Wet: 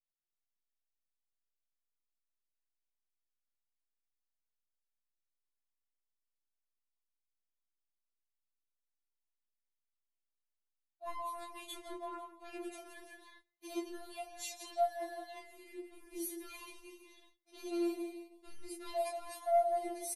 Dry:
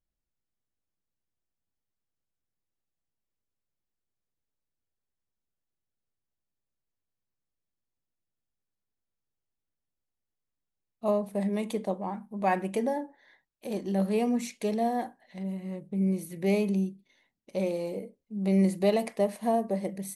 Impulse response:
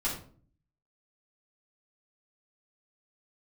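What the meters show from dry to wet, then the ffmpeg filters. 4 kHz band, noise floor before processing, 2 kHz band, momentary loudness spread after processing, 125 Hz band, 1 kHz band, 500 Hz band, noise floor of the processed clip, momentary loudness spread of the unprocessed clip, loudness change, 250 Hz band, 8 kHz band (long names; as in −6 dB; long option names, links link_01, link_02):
−4.5 dB, below −85 dBFS, −10.5 dB, 18 LU, below −40 dB, −5.5 dB, −9.5 dB, below −85 dBFS, 10 LU, −10.0 dB, −16.0 dB, −1.0 dB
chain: -filter_complex "[0:a]asplit=2[link_01][link_02];[link_02]aecho=0:1:167|334|501|668:0.282|0.093|0.0307|0.0101[link_03];[link_01][link_03]amix=inputs=2:normalize=0,asoftclip=type=tanh:threshold=-19.5dB,equalizer=frequency=125:width_type=o:width=1:gain=-12,equalizer=frequency=500:width_type=o:width=1:gain=-8,equalizer=frequency=2000:width_type=o:width=1:gain=-7,equalizer=frequency=8000:width_type=o:width=1:gain=-4,aresample=32000,aresample=44100,flanger=delay=20:depth=6.8:speed=0.14,agate=range=-21dB:threshold=-60dB:ratio=16:detection=peak,acontrast=69,lowshelf=frequency=260:gain=-7.5,bandreject=frequency=50:width_type=h:width=6,bandreject=frequency=100:width_type=h:width=6,bandreject=frequency=150:width_type=h:width=6,bandreject=frequency=200:width_type=h:width=6,bandreject=frequency=250:width_type=h:width=6,bandreject=frequency=300:width_type=h:width=6,bandreject=frequency=350:width_type=h:width=6,areverse,acompressor=threshold=-40dB:ratio=12,areverse,afftfilt=real='re*4*eq(mod(b,16),0)':imag='im*4*eq(mod(b,16),0)':win_size=2048:overlap=0.75,volume=6.5dB"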